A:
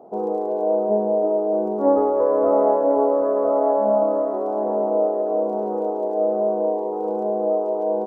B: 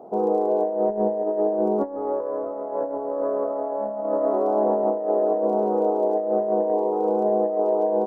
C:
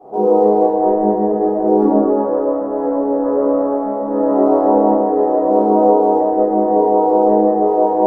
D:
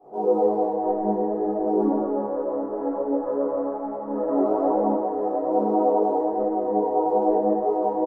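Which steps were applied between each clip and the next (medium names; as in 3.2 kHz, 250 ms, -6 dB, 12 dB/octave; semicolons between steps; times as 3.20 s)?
compressor with a negative ratio -22 dBFS, ratio -0.5
reverberation RT60 1.9 s, pre-delay 3 ms, DRR -18 dB; trim -10.5 dB
delay 773 ms -16.5 dB; resampled via 32 kHz; detune thickener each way 23 cents; trim -5.5 dB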